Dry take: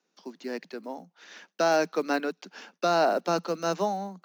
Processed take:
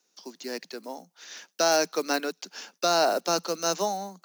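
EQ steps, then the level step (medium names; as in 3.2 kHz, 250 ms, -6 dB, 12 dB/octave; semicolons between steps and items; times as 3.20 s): tone controls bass -6 dB, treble +14 dB; 0.0 dB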